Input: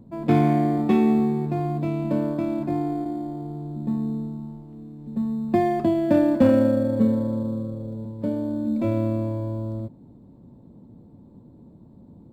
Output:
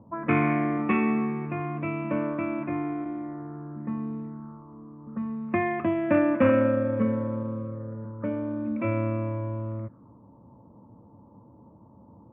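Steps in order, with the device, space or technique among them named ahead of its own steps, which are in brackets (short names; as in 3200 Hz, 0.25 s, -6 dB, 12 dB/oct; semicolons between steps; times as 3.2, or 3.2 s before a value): envelope filter bass rig (envelope low-pass 780–2500 Hz up, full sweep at -25 dBFS; speaker cabinet 85–2400 Hz, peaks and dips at 160 Hz -9 dB, 240 Hz -6 dB, 380 Hz -8 dB, 750 Hz -9 dB, 1200 Hz +9 dB)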